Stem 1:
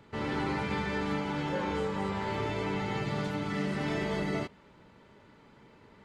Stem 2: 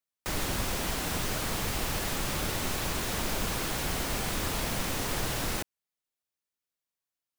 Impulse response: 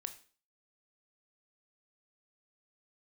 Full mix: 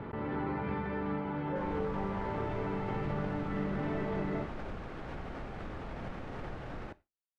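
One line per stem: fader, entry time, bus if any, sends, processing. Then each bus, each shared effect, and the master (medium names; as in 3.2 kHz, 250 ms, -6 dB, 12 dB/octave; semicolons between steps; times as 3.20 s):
-3.0 dB, 0.00 s, no send, none
-15.5 dB, 1.30 s, send -4.5 dB, band-stop 1 kHz, Q 14; level rider gain up to 3.5 dB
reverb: on, RT60 0.40 s, pre-delay 17 ms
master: gate with hold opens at -39 dBFS; low-pass 1.5 kHz 12 dB/octave; swell ahead of each attack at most 26 dB/s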